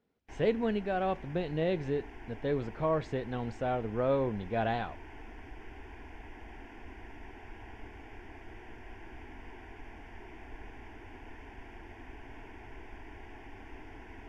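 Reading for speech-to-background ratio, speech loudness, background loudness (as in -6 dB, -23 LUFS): 17.0 dB, -33.0 LUFS, -50.0 LUFS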